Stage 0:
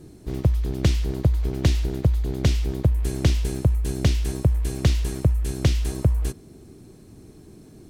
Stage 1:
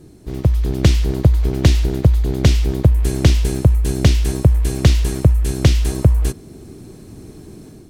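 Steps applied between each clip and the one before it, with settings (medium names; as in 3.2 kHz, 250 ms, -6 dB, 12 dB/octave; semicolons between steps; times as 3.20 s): level rider gain up to 7.5 dB; trim +1.5 dB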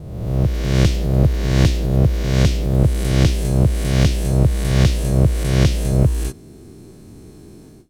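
reverse spectral sustain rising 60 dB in 1.24 s; gate with hold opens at -28 dBFS; trim -6 dB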